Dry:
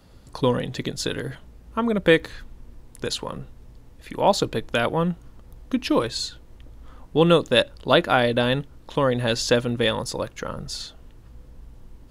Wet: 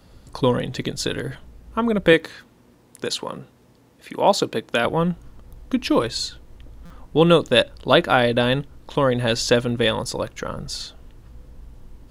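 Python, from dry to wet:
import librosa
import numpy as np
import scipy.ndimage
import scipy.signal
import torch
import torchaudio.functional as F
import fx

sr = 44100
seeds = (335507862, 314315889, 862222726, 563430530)

y = fx.highpass(x, sr, hz=170.0, slope=12, at=(2.13, 4.85))
y = fx.buffer_glitch(y, sr, at_s=(6.85,), block=256, repeats=8)
y = y * librosa.db_to_amplitude(2.0)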